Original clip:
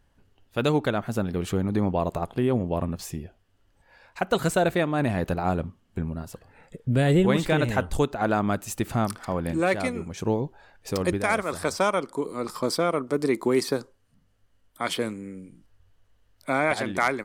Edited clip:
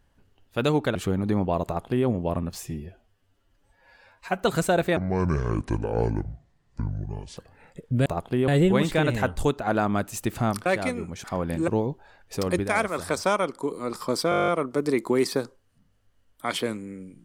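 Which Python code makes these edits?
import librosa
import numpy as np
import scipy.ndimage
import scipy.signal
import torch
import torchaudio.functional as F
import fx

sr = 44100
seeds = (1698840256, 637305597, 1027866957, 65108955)

y = fx.edit(x, sr, fx.cut(start_s=0.95, length_s=0.46),
    fx.duplicate(start_s=2.11, length_s=0.42, to_s=7.02),
    fx.stretch_span(start_s=3.09, length_s=1.17, factor=1.5),
    fx.speed_span(start_s=4.84, length_s=1.49, speed=0.62),
    fx.move(start_s=9.2, length_s=0.44, to_s=10.22),
    fx.stutter(start_s=12.84, slice_s=0.02, count=10), tone=tone)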